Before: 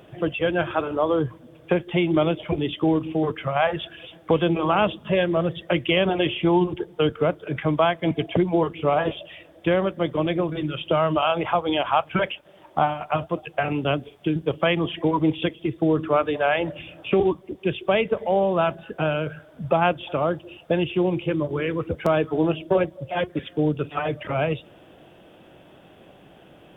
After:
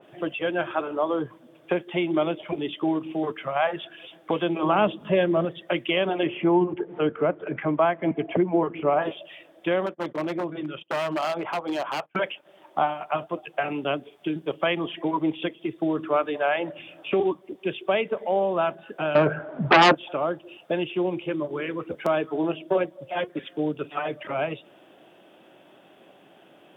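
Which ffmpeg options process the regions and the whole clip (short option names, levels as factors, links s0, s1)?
-filter_complex "[0:a]asettb=1/sr,asplit=3[s0][s1][s2];[s0]atrim=end=4.614[s3];[s1]atrim=start=4.61:end=5.45,asetpts=PTS-STARTPTS,afade=t=in:d=0.004:c=qsin,afade=t=out:st=0.836:d=0.004:c=qsin,lowshelf=f=370:g=8.5,acompressor=mode=upward:threshold=0.0316:ratio=2.5:attack=3.2:release=140:knee=2.83:detection=peak[s4];[s2]atrim=start=5.446[s5];[s3][s4]acrossfade=d=0.004:c1=hsin:c2=qsin[s6];[s6][s5]acrossfade=d=0.004:c1=qsin:c2=hsin,asettb=1/sr,asplit=3[s7][s8][s9];[s7]atrim=end=6.234[s10];[s8]atrim=start=6.23:end=9.02,asetpts=PTS-STARTPTS,afade=t=in:d=0.004:c=qsin,afade=t=out:st=2.786:d=0.004:c=qsin,lowpass=f=2500:w=0.5412,lowpass=f=2500:w=1.3066,acompressor=mode=upward:threshold=0.0631:ratio=2.5:attack=3.2:release=140:knee=2.83:detection=peak,lowshelf=f=430:g=4.5[s11];[s9]atrim=start=9.016[s12];[s10][s11]acrossfade=d=0.004:c1=hsin:c2=qsin[s13];[s13][s12]acrossfade=d=0.004:c1=qsin:c2=hsin,asettb=1/sr,asplit=3[s14][s15][s16];[s14]atrim=end=9.864[s17];[s15]atrim=start=9.86:end=12.16,asetpts=PTS-STARTPTS,afade=t=in:d=0.004:c=qsin,afade=t=out:st=2.296:d=0.004:c=qsin,lowpass=f=2000:p=1,agate=range=0.0562:threshold=0.0158:ratio=16:release=100:detection=peak,aeval=exprs='0.126*(abs(mod(val(0)/0.126+3,4)-2)-1)':c=same[s18];[s16]atrim=start=12.156[s19];[s17][s18]acrossfade=d=0.004:c1=hsin:c2=qsin[s20];[s20][s19]acrossfade=d=0.004:c1=qsin:c2=hsin,asettb=1/sr,asplit=3[s21][s22][s23];[s21]atrim=end=19.154[s24];[s22]atrim=start=19.15:end=19.95,asetpts=PTS-STARTPTS,afade=t=in:d=0.004:c=qsin,afade=t=out:st=0.796:d=0.004:c=qsin,lowpass=1400,aeval=exprs='0.398*sin(PI/2*3.98*val(0)/0.398)':c=same[s25];[s23]atrim=start=19.946[s26];[s24][s25]acrossfade=d=0.004:c1=hsin:c2=qsin[s27];[s27][s26]acrossfade=d=0.004:c1=qsin:c2=hsin,highpass=250,bandreject=f=480:w=12,adynamicequalizer=threshold=0.0126:dfrequency=2500:dqfactor=0.7:tfrequency=2500:tqfactor=0.7:attack=5:release=100:ratio=0.375:range=2.5:mode=cutabove:tftype=highshelf,volume=0.794"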